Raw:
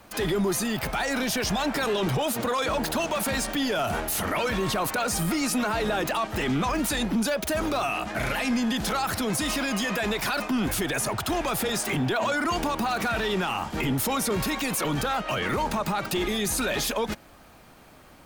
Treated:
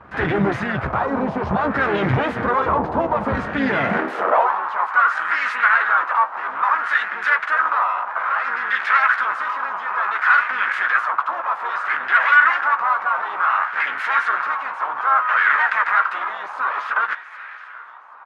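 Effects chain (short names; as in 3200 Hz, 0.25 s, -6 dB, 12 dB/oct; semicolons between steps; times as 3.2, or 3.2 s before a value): half-wave rectifier; on a send: thinning echo 0.773 s, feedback 75%, high-pass 280 Hz, level -22.5 dB; on the sum: high-pass sweep 85 Hz -> 1400 Hz, 3.59–4.62; doubler 15 ms -9.5 dB; harmoniser -4 st -7 dB; LFO low-pass sine 0.59 Hz 950–1900 Hz; gain +7.5 dB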